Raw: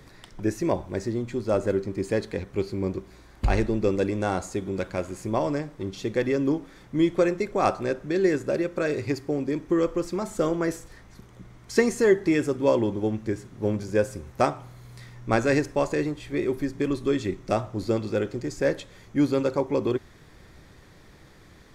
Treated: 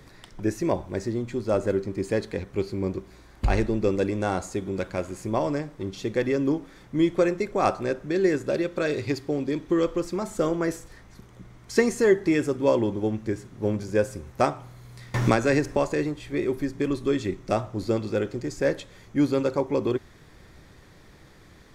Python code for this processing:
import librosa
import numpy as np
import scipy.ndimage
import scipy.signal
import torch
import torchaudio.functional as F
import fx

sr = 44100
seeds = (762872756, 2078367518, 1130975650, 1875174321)

y = fx.peak_eq(x, sr, hz=3600.0, db=7.0, octaves=0.62, at=(8.46, 10.0))
y = fx.band_squash(y, sr, depth_pct=100, at=(15.14, 15.77))